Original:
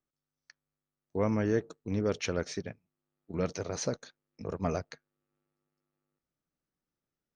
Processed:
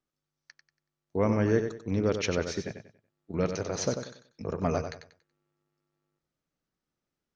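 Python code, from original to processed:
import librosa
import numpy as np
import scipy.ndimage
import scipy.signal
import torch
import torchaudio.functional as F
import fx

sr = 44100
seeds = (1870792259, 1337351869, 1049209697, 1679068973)

y = scipy.signal.sosfilt(scipy.signal.butter(4, 7200.0, 'lowpass', fs=sr, output='sos'), x)
y = fx.echo_feedback(y, sr, ms=94, feedback_pct=30, wet_db=-8.0)
y = y * librosa.db_to_amplitude(3.0)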